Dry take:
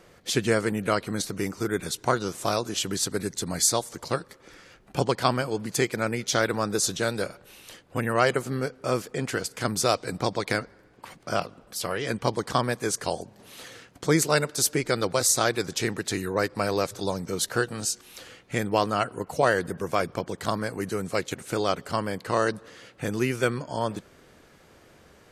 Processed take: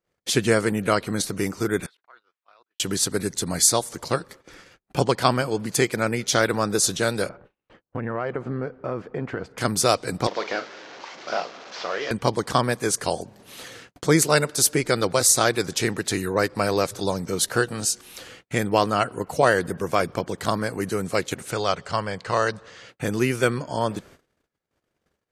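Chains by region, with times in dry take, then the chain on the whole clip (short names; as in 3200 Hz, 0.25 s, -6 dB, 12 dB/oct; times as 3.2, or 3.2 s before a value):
1.86–2.8 HPF 1300 Hz + level quantiser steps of 24 dB + air absorption 450 m
7.29–9.58 LPF 1500 Hz + compressor 4:1, threshold -27 dBFS
10.27–12.11 delta modulation 32 kbps, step -37.5 dBFS + HPF 410 Hz + doubler 41 ms -10.5 dB
21.51–22.89 LPF 7700 Hz 24 dB/oct + bell 280 Hz -9.5 dB 1 oct
whole clip: gate -50 dBFS, range -36 dB; dynamic EQ 9800 Hz, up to +4 dB, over -50 dBFS, Q 3.5; gain +3.5 dB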